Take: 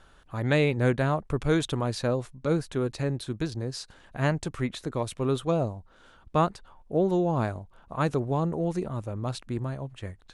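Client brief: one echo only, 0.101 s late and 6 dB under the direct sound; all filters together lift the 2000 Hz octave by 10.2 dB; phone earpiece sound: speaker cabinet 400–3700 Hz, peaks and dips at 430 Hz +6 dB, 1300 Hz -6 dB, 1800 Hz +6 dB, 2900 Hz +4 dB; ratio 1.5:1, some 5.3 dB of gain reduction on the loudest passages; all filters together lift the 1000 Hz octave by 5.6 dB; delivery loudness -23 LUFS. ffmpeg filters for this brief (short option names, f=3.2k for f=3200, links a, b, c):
-af "equalizer=f=1k:t=o:g=7,equalizer=f=2k:t=o:g=7,acompressor=threshold=-28dB:ratio=1.5,highpass=400,equalizer=f=430:t=q:w=4:g=6,equalizer=f=1.3k:t=q:w=4:g=-6,equalizer=f=1.8k:t=q:w=4:g=6,equalizer=f=2.9k:t=q:w=4:g=4,lowpass=f=3.7k:w=0.5412,lowpass=f=3.7k:w=1.3066,aecho=1:1:101:0.501,volume=6.5dB"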